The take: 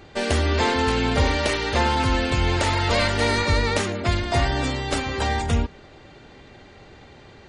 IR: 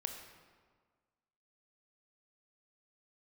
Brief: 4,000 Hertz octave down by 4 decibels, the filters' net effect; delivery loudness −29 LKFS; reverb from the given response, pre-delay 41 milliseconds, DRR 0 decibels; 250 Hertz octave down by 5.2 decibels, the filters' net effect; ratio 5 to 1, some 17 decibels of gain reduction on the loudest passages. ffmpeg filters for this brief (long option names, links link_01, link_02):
-filter_complex "[0:a]equalizer=frequency=250:width_type=o:gain=-6.5,equalizer=frequency=4000:width_type=o:gain=-5,acompressor=threshold=-37dB:ratio=5,asplit=2[link_01][link_02];[1:a]atrim=start_sample=2205,adelay=41[link_03];[link_02][link_03]afir=irnorm=-1:irlink=0,volume=0.5dB[link_04];[link_01][link_04]amix=inputs=2:normalize=0,volume=7dB"